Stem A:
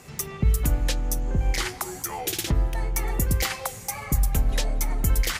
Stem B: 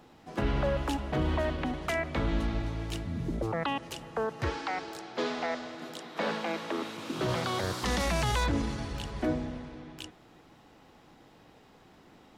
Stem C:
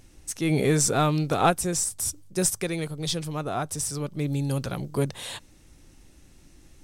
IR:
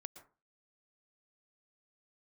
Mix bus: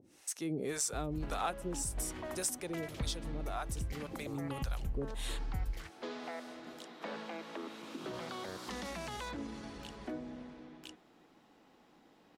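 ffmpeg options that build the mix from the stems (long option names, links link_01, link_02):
-filter_complex "[0:a]bass=frequency=250:gain=9,treble=frequency=4000:gain=-8,adelay=500,volume=-12.5dB[link_01];[1:a]lowshelf=frequency=160:width_type=q:width=1.5:gain=-7.5,adelay=850,volume=-7.5dB[link_02];[2:a]acrossover=split=570[link_03][link_04];[link_03]aeval=exprs='val(0)*(1-1/2+1/2*cos(2*PI*1.8*n/s))':channel_layout=same[link_05];[link_04]aeval=exprs='val(0)*(1-1/2-1/2*cos(2*PI*1.8*n/s))':channel_layout=same[link_06];[link_05][link_06]amix=inputs=2:normalize=0,highpass=230,volume=1.5dB,asplit=2[link_07][link_08];[link_08]apad=whole_len=260097[link_09];[link_01][link_09]sidechaincompress=threshold=-30dB:ratio=8:attack=16:release=555[link_10];[link_10][link_02][link_07]amix=inputs=3:normalize=0,acompressor=threshold=-42dB:ratio=2"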